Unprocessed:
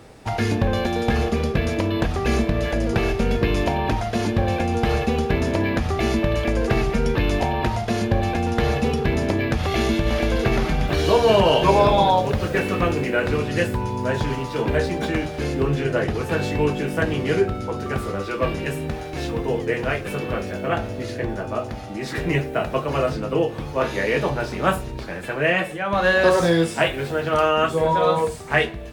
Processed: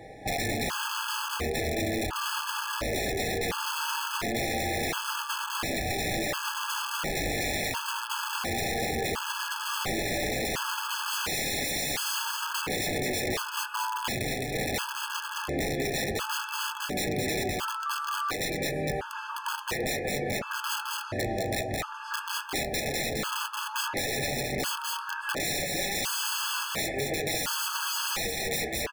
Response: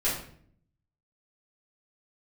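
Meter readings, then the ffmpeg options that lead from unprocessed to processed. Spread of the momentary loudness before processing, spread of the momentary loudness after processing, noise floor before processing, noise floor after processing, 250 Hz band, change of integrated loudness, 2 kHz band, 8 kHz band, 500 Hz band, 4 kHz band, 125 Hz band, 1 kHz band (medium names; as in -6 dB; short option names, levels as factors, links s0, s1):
9 LU, 4 LU, -32 dBFS, -38 dBFS, -12.5 dB, -8.0 dB, -5.0 dB, +7.5 dB, -12.5 dB, 0.0 dB, -14.5 dB, -8.0 dB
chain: -filter_complex "[0:a]equalizer=f=1200:t=o:w=2.1:g=13,acrossover=split=2900[s0][s1];[s1]acompressor=threshold=0.01:ratio=4:attack=1:release=60[s2];[s0][s2]amix=inputs=2:normalize=0,aeval=exprs='(mod(3.98*val(0)+1,2)-1)/3.98':c=same,aecho=1:1:214:0.596,flanger=delay=6.2:depth=4.7:regen=-70:speed=0.16:shape=triangular,acompressor=threshold=0.0562:ratio=6,afftfilt=real='re*gt(sin(2*PI*0.71*pts/sr)*(1-2*mod(floor(b*sr/1024/860),2)),0)':imag='im*gt(sin(2*PI*0.71*pts/sr)*(1-2*mod(floor(b*sr/1024/860),2)),0)':win_size=1024:overlap=0.75"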